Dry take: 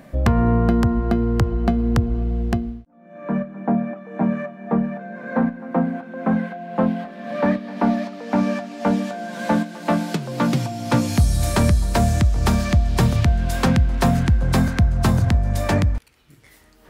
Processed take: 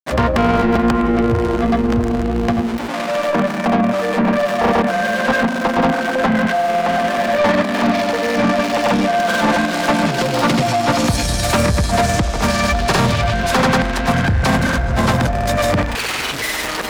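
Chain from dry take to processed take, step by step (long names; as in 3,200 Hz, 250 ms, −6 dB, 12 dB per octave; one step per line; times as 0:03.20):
converter with a step at zero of −29 dBFS
mid-hump overdrive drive 26 dB, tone 4,100 Hz, clips at −6.5 dBFS
granular cloud, pitch spread up and down by 0 semitones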